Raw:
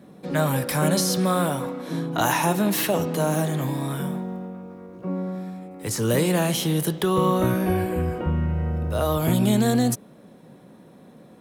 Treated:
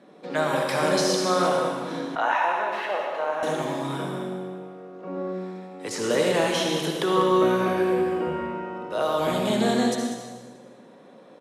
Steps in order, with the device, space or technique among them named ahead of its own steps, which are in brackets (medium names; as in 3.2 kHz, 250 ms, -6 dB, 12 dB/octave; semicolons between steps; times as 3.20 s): supermarket ceiling speaker (band-pass 340–5800 Hz; reverberation RT60 1.4 s, pre-delay 57 ms, DRR 1 dB); 2.15–3.43 s: three-band isolator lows -24 dB, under 530 Hz, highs -23 dB, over 2.6 kHz; delay 195 ms -11.5 dB